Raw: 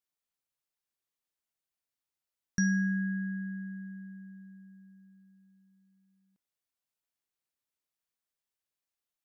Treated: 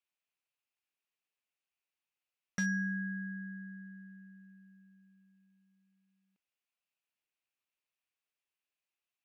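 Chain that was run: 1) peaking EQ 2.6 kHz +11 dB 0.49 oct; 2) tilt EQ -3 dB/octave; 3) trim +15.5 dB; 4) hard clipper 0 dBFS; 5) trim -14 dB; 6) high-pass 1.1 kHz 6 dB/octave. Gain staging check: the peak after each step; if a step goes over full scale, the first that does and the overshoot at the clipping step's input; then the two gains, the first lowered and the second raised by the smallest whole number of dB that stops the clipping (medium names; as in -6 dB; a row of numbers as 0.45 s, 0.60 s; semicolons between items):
-17.5 dBFS, -12.0 dBFS, +3.5 dBFS, 0.0 dBFS, -14.0 dBFS, -22.5 dBFS; step 3, 3.5 dB; step 3 +11.5 dB, step 5 -10 dB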